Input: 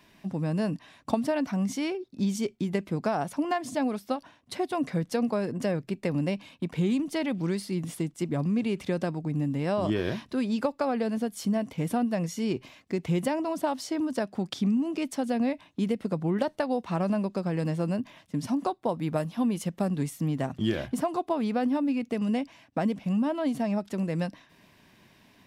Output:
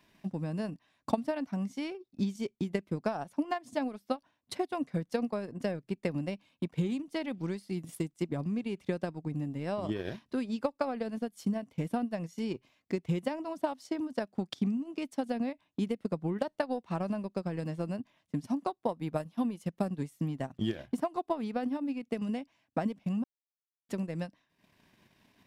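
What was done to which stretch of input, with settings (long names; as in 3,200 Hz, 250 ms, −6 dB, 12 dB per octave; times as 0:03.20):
0:07.74–0:08.15: high-shelf EQ 7,500 Hz +8.5 dB
0:23.24–0:23.89: silence
whole clip: transient designer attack +6 dB, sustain −10 dB; level −7.5 dB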